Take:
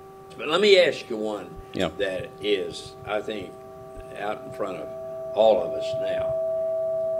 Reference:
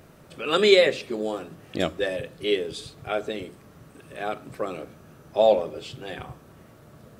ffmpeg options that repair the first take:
ffmpeg -i in.wav -filter_complex "[0:a]bandreject=frequency=386.8:width_type=h:width=4,bandreject=frequency=773.6:width_type=h:width=4,bandreject=frequency=1160.4:width_type=h:width=4,bandreject=frequency=650:width=30,asplit=3[link_01][link_02][link_03];[link_01]afade=type=out:start_time=1.55:duration=0.02[link_04];[link_02]highpass=frequency=140:width=0.5412,highpass=frequency=140:width=1.3066,afade=type=in:start_time=1.55:duration=0.02,afade=type=out:start_time=1.67:duration=0.02[link_05];[link_03]afade=type=in:start_time=1.67:duration=0.02[link_06];[link_04][link_05][link_06]amix=inputs=3:normalize=0,asplit=3[link_07][link_08][link_09];[link_07]afade=type=out:start_time=3.95:duration=0.02[link_10];[link_08]highpass=frequency=140:width=0.5412,highpass=frequency=140:width=1.3066,afade=type=in:start_time=3.95:duration=0.02,afade=type=out:start_time=4.07:duration=0.02[link_11];[link_09]afade=type=in:start_time=4.07:duration=0.02[link_12];[link_10][link_11][link_12]amix=inputs=3:normalize=0" out.wav

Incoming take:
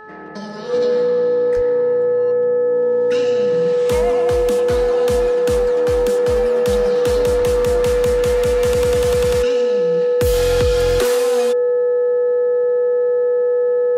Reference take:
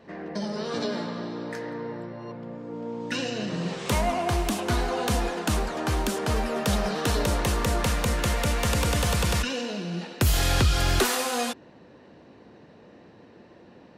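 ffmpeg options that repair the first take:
ffmpeg -i in.wav -filter_complex "[0:a]bandreject=frequency=430.5:width_type=h:width=4,bandreject=frequency=861:width_type=h:width=4,bandreject=frequency=1291.5:width_type=h:width=4,bandreject=frequency=1722:width_type=h:width=4,bandreject=frequency=490:width=30,asplit=3[link_01][link_02][link_03];[link_01]afade=type=out:start_time=1.55:duration=0.02[link_04];[link_02]highpass=frequency=140:width=0.5412,highpass=frequency=140:width=1.3066,afade=type=in:start_time=1.55:duration=0.02,afade=type=out:start_time=1.67:duration=0.02[link_05];[link_03]afade=type=in:start_time=1.67:duration=0.02[link_06];[link_04][link_05][link_06]amix=inputs=3:normalize=0,asplit=3[link_07][link_08][link_09];[link_07]afade=type=out:start_time=7.38:duration=0.02[link_10];[link_08]highpass=frequency=140:width=0.5412,highpass=frequency=140:width=1.3066,afade=type=in:start_time=7.38:duration=0.02,afade=type=out:start_time=7.5:duration=0.02[link_11];[link_09]afade=type=in:start_time=7.5:duration=0.02[link_12];[link_10][link_11][link_12]amix=inputs=3:normalize=0" out.wav

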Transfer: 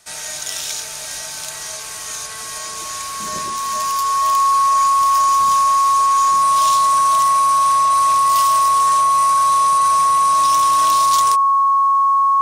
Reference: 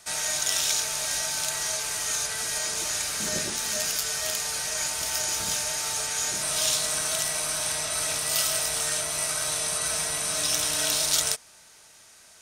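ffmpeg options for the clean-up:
ffmpeg -i in.wav -af "bandreject=frequency=1100:width=30" out.wav

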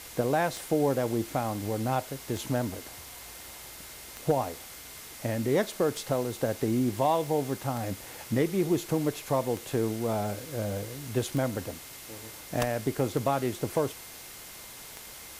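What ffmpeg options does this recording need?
ffmpeg -i in.wav -af "adeclick=threshold=4,bandreject=frequency=2100:width=30,afwtdn=0.0063" out.wav

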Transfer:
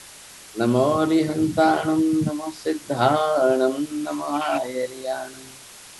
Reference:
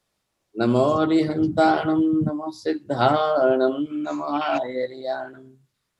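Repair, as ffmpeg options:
ffmpeg -i in.wav -af "afwtdn=0.0089" out.wav

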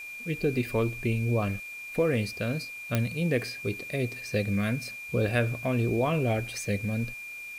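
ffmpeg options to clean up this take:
ffmpeg -i in.wav -af "adeclick=threshold=4,bandreject=frequency=2400:width=30,afwtdn=0.0022" out.wav

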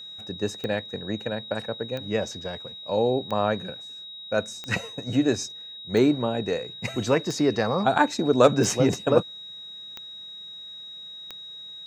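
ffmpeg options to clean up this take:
ffmpeg -i in.wav -af "adeclick=threshold=4,bandreject=frequency=3800:width=30" out.wav

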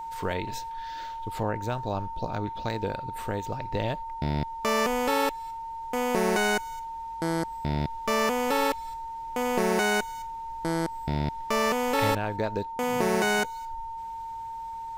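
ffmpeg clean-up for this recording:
ffmpeg -i in.wav -af "bandreject=frequency=910:width=30" out.wav

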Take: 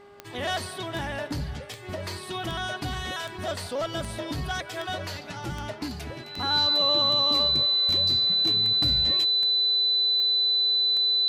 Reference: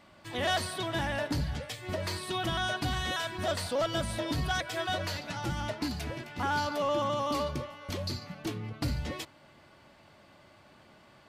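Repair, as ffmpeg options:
ffmpeg -i in.wav -af "adeclick=threshold=4,bandreject=frequency=404.9:width_type=h:width=4,bandreject=frequency=809.8:width_type=h:width=4,bandreject=frequency=1214.7:width_type=h:width=4,bandreject=frequency=1619.6:width_type=h:width=4,bandreject=frequency=2024.5:width_type=h:width=4,bandreject=frequency=4000:width=30" out.wav

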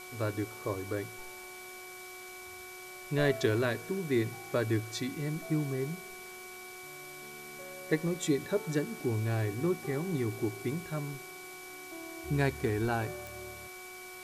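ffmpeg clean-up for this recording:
ffmpeg -i in.wav -af "adeclick=threshold=4,bandreject=frequency=367:width_type=h:width=4,bandreject=frequency=734:width_type=h:width=4,bandreject=frequency=1101:width_type=h:width=4,bandreject=frequency=1468:width_type=h:width=4,bandreject=frequency=2300:width=30,afftdn=noise_reduction=30:noise_floor=-47" out.wav

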